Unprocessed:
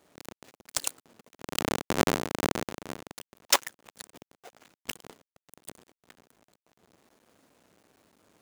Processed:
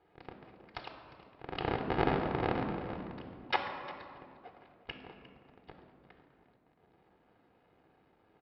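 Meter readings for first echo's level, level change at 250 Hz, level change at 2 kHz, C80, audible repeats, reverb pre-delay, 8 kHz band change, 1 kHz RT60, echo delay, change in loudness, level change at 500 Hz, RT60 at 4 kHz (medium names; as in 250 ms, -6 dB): -17.5 dB, -3.0 dB, -4.5 dB, 7.0 dB, 1, 3 ms, under -40 dB, 2.0 s, 354 ms, -6.0 dB, -2.0 dB, 1.1 s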